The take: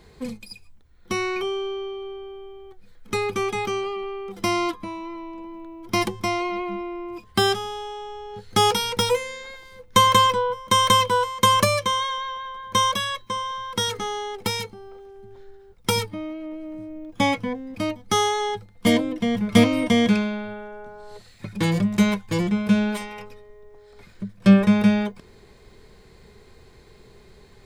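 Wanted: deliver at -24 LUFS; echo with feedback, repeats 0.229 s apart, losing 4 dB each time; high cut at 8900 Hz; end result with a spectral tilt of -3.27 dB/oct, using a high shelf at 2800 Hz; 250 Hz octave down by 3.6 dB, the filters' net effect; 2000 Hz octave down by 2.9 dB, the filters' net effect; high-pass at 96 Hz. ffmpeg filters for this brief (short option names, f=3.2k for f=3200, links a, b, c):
-af "highpass=96,lowpass=8.9k,equalizer=f=250:t=o:g=-4.5,equalizer=f=2k:t=o:g=-6,highshelf=f=2.8k:g=6,aecho=1:1:229|458|687|916|1145|1374|1603|1832|2061:0.631|0.398|0.25|0.158|0.0994|0.0626|0.0394|0.0249|0.0157,volume=-2.5dB"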